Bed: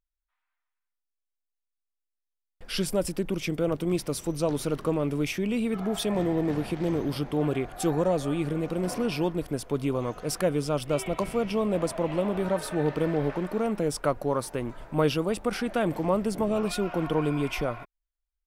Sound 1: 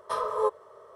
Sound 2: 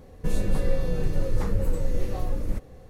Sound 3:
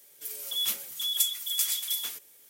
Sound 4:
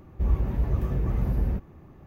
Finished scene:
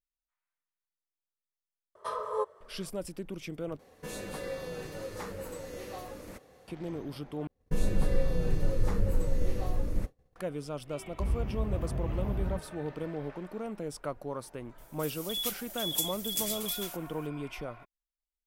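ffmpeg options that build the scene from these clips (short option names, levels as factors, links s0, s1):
-filter_complex "[2:a]asplit=2[s0][s1];[0:a]volume=0.299[s2];[1:a]bandreject=f=5400:w=18[s3];[s0]highpass=f=740:p=1[s4];[s1]agate=range=0.0224:threshold=0.0224:ratio=3:release=100:detection=peak[s5];[s2]asplit=3[s6][s7][s8];[s6]atrim=end=3.794[s9];[s4]atrim=end=2.89,asetpts=PTS-STARTPTS,volume=0.891[s10];[s7]atrim=start=6.676:end=7.474[s11];[s5]atrim=end=2.89,asetpts=PTS-STARTPTS,volume=0.708[s12];[s8]atrim=start=10.356[s13];[s3]atrim=end=0.95,asetpts=PTS-STARTPTS,volume=0.531,afade=t=in:d=0.004:c=hsin,afade=t=out:st=0.946:d=0.004:c=hsin,adelay=1950[s14];[4:a]atrim=end=2.06,asetpts=PTS-STARTPTS,volume=0.447,afade=t=in:d=0.004:c=hsin,afade=t=out:st=2.056:d=0.004:c=hsin,adelay=11000[s15];[3:a]atrim=end=2.49,asetpts=PTS-STARTPTS,volume=0.562,afade=t=in:d=0.004:c=hsin,afade=t=out:st=2.486:d=0.004:c=hsin,adelay=14780[s16];[s9][s10]acrossfade=d=0.004:c1=hsin:c2=hsin[s17];[s17][s11]acrossfade=d=0.004:c1=hsin:c2=hsin[s18];[s18][s12]acrossfade=d=0.004:c1=hsin:c2=hsin[s19];[s19][s13]acrossfade=d=0.004:c1=hsin:c2=hsin[s20];[s20][s14][s15][s16]amix=inputs=4:normalize=0"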